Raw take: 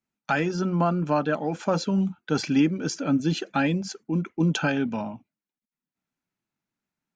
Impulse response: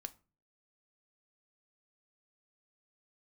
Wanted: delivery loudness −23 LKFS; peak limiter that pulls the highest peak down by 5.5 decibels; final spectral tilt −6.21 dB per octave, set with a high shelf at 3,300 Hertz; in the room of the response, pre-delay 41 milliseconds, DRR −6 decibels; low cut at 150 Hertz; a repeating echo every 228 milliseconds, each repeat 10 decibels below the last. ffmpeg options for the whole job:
-filter_complex "[0:a]highpass=150,highshelf=frequency=3300:gain=-8.5,alimiter=limit=-17.5dB:level=0:latency=1,aecho=1:1:228|456|684|912:0.316|0.101|0.0324|0.0104,asplit=2[link_01][link_02];[1:a]atrim=start_sample=2205,adelay=41[link_03];[link_02][link_03]afir=irnorm=-1:irlink=0,volume=10dB[link_04];[link_01][link_04]amix=inputs=2:normalize=0,volume=-3dB"

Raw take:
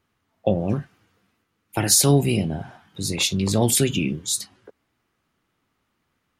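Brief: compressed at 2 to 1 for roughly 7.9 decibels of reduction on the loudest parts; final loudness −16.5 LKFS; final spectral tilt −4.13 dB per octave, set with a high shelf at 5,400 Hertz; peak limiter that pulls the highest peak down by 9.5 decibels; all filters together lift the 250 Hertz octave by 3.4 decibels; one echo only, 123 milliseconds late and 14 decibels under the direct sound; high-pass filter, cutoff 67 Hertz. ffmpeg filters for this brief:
ffmpeg -i in.wav -af "highpass=67,equalizer=frequency=250:width_type=o:gain=4.5,highshelf=frequency=5400:gain=7.5,acompressor=threshold=-22dB:ratio=2,alimiter=limit=-15.5dB:level=0:latency=1,aecho=1:1:123:0.2,volume=10dB" out.wav

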